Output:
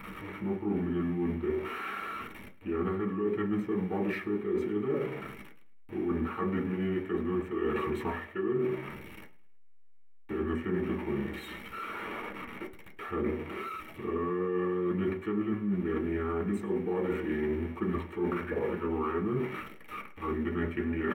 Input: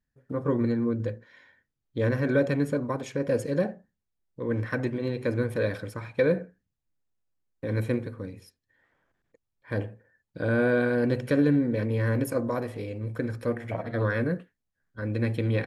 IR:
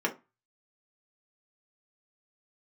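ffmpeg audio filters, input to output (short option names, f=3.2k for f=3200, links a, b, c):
-filter_complex "[0:a]aeval=exprs='val(0)+0.5*0.0126*sgn(val(0))':c=same,equalizer=f=2.9k:t=o:w=0.37:g=13.5,asetrate=32667,aresample=44100[a];[1:a]atrim=start_sample=2205[b];[a][b]afir=irnorm=-1:irlink=0,areverse,acompressor=threshold=-23dB:ratio=12,areverse,equalizer=f=6k:t=o:w=1.1:g=-12,asplit=2[c][d];[d]aecho=0:1:106|212|318:0.1|0.04|0.016[e];[c][e]amix=inputs=2:normalize=0,volume=-4.5dB"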